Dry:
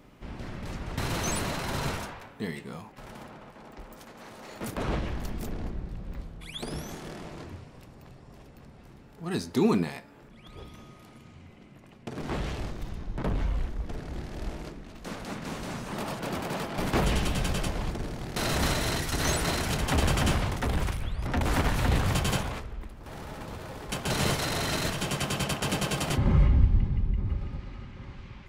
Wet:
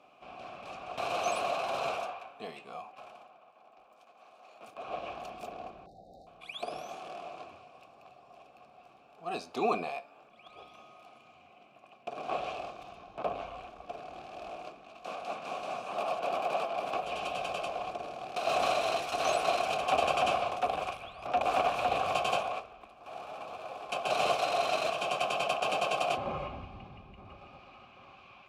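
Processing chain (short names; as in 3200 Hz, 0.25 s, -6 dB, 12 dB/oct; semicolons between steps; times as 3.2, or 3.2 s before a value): vowel filter a; high shelf 2800 Hz +11.5 dB; 3–5.1 dip -10 dB, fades 0.35 s quadratic; 5.86–6.27 brick-wall FIR band-stop 830–3600 Hz; 16.64–18.47 compressor 6:1, threshold -41 dBFS, peak gain reduction 11 dB; dynamic EQ 530 Hz, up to +5 dB, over -53 dBFS, Q 1.6; gain +8 dB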